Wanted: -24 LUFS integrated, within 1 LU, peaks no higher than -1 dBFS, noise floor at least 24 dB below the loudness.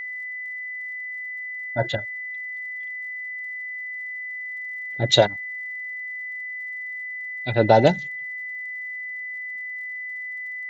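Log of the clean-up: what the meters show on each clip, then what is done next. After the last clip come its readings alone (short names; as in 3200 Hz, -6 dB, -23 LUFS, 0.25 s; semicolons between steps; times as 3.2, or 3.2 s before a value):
ticks 60/s; steady tone 2000 Hz; tone level -30 dBFS; loudness -26.0 LUFS; peak -2.5 dBFS; loudness target -24.0 LUFS
-> de-click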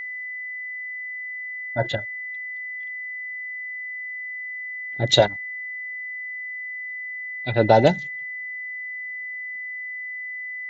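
ticks 0.56/s; steady tone 2000 Hz; tone level -30 dBFS
-> notch 2000 Hz, Q 30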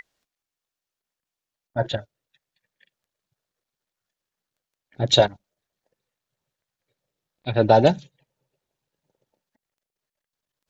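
steady tone none; loudness -21.0 LUFS; peak -2.5 dBFS; loudness target -24.0 LUFS
-> gain -3 dB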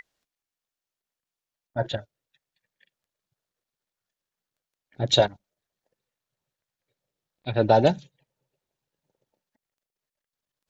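loudness -24.0 LUFS; peak -5.5 dBFS; noise floor -90 dBFS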